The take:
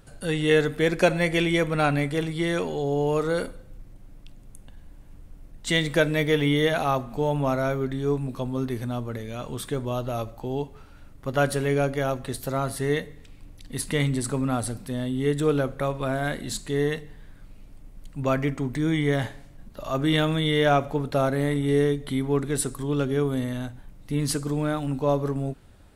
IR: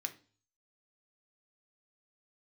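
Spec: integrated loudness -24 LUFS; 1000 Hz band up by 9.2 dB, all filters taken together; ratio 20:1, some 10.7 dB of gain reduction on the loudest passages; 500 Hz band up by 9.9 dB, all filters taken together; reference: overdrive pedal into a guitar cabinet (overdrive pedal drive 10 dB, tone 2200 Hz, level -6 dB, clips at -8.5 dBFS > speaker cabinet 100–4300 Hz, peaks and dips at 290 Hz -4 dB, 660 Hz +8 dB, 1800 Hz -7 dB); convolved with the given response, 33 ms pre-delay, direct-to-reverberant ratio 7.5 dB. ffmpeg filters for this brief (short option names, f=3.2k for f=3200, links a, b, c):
-filter_complex "[0:a]equalizer=f=500:t=o:g=8,equalizer=f=1k:t=o:g=4,acompressor=threshold=-18dB:ratio=20,asplit=2[a][b];[1:a]atrim=start_sample=2205,adelay=33[c];[b][c]afir=irnorm=-1:irlink=0,volume=-7dB[d];[a][d]amix=inputs=2:normalize=0,asplit=2[e][f];[f]highpass=f=720:p=1,volume=10dB,asoftclip=type=tanh:threshold=-8.5dB[g];[e][g]amix=inputs=2:normalize=0,lowpass=f=2.2k:p=1,volume=-6dB,highpass=100,equalizer=f=290:t=q:w=4:g=-4,equalizer=f=660:t=q:w=4:g=8,equalizer=f=1.8k:t=q:w=4:g=-7,lowpass=f=4.3k:w=0.5412,lowpass=f=4.3k:w=1.3066,volume=-2dB"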